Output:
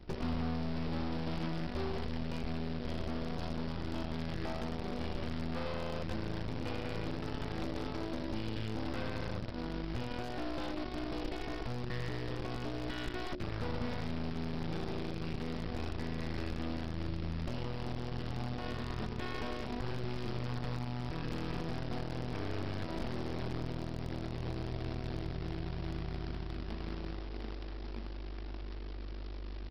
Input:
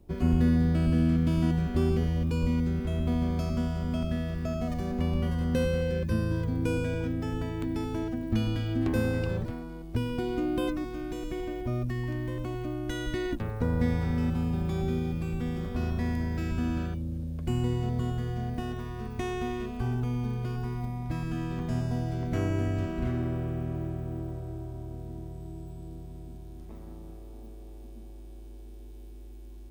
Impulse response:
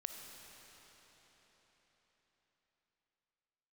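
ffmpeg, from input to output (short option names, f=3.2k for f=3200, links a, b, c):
-af "aeval=exprs='0.237*(cos(1*acos(clip(val(0)/0.237,-1,1)))-cos(1*PI/2))+0.00188*(cos(2*acos(clip(val(0)/0.237,-1,1)))-cos(2*PI/2))+0.0531*(cos(8*acos(clip(val(0)/0.237,-1,1)))-cos(8*PI/2))':c=same,acompressor=threshold=-33dB:ratio=16,aresample=11025,acrusher=bits=2:mode=log:mix=0:aa=0.000001,aresample=44100,volume=31.5dB,asoftclip=hard,volume=-31.5dB,bandreject=f=91.25:t=h:w=4,bandreject=f=182.5:t=h:w=4,bandreject=f=273.75:t=h:w=4,bandreject=f=365:t=h:w=4,bandreject=f=456.25:t=h:w=4,bandreject=f=547.5:t=h:w=4,bandreject=f=638.75:t=h:w=4,volume=2.5dB"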